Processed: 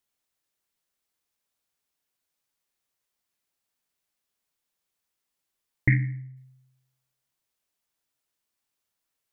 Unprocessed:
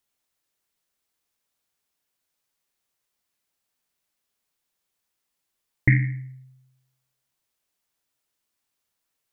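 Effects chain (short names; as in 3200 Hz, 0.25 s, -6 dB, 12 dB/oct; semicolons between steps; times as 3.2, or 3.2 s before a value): 5.95–6.37 high shelf 2100 Hz -10 dB; gain -3 dB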